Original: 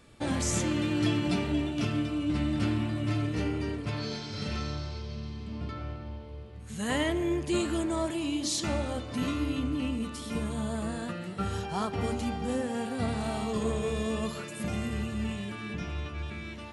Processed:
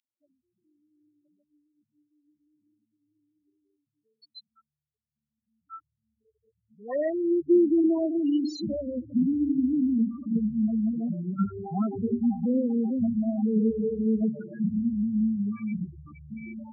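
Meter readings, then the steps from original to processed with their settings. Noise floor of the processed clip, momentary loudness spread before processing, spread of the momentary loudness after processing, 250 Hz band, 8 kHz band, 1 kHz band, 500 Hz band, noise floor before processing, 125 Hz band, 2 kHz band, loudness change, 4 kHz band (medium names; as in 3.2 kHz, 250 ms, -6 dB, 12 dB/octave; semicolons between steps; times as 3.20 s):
under -85 dBFS, 10 LU, 9 LU, +5.5 dB, under -20 dB, -8.0 dB, +3.0 dB, -41 dBFS, -5.5 dB, under -15 dB, +5.0 dB, under -10 dB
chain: loudest bins only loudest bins 4; high-pass sweep 3.2 kHz -> 200 Hz, 4.93–8.23 s; trim +3 dB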